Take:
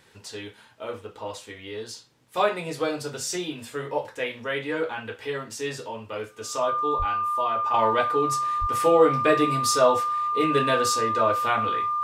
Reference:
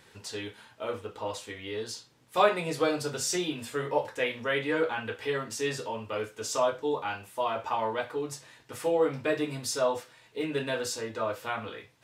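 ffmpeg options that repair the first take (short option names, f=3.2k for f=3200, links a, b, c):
-filter_complex "[0:a]bandreject=f=1.2k:w=30,asplit=3[a][b][c];[a]afade=t=out:st=6.98:d=0.02[d];[b]highpass=f=140:w=0.5412,highpass=f=140:w=1.3066,afade=t=in:st=6.98:d=0.02,afade=t=out:st=7.1:d=0.02[e];[c]afade=t=in:st=7.1:d=0.02[f];[d][e][f]amix=inputs=3:normalize=0,asplit=3[g][h][i];[g]afade=t=out:st=8.6:d=0.02[j];[h]highpass=f=140:w=0.5412,highpass=f=140:w=1.3066,afade=t=in:st=8.6:d=0.02,afade=t=out:st=8.72:d=0.02[k];[i]afade=t=in:st=8.72:d=0.02[l];[j][k][l]amix=inputs=3:normalize=0,asetnsamples=n=441:p=0,asendcmd='7.74 volume volume -7.5dB',volume=0dB"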